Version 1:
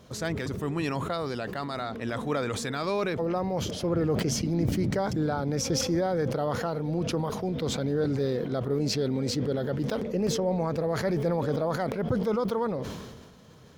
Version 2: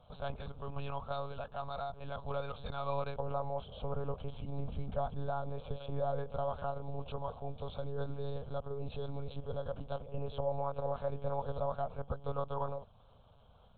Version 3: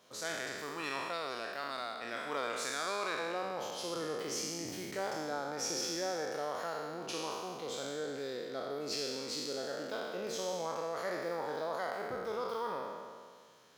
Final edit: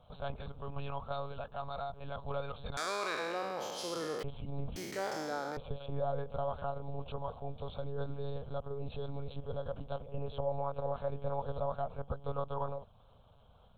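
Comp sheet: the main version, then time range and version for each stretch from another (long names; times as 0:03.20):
2
0:02.77–0:04.23: punch in from 3
0:04.76–0:05.57: punch in from 3
not used: 1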